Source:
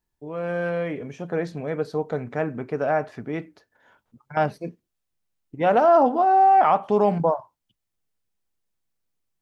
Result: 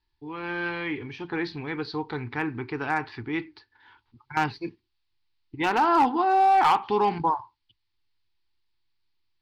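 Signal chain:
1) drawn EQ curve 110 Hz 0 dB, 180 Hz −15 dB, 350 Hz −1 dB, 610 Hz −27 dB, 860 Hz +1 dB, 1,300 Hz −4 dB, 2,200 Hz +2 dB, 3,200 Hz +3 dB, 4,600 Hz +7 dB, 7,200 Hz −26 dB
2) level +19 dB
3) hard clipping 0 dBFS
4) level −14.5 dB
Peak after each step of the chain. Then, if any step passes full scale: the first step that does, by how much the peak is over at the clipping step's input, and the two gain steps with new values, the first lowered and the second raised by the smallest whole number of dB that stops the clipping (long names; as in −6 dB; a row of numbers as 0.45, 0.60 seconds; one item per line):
−12.0, +7.0, 0.0, −14.5 dBFS
step 2, 7.0 dB
step 2 +12 dB, step 4 −7.5 dB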